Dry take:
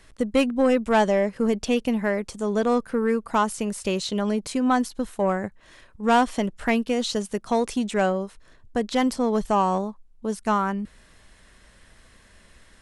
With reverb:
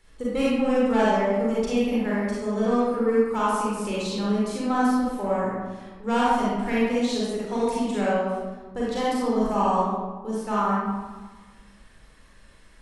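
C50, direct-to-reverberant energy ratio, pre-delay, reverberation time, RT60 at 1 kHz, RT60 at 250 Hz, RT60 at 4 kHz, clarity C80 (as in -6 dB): -4.0 dB, -7.5 dB, 35 ms, 1.4 s, 1.4 s, 1.7 s, 0.75 s, 0.0 dB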